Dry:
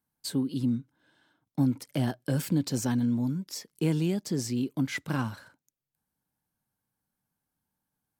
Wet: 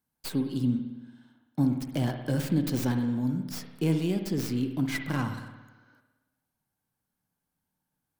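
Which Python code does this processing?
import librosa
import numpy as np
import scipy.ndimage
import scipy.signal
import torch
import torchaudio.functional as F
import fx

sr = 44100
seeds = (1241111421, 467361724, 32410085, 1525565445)

y = fx.tracing_dist(x, sr, depth_ms=0.15)
y = fx.spec_repair(y, sr, seeds[0], start_s=5.58, length_s=0.39, low_hz=250.0, high_hz=6600.0, source='before')
y = fx.rev_spring(y, sr, rt60_s=1.1, pass_ms=(56,), chirp_ms=45, drr_db=6.0)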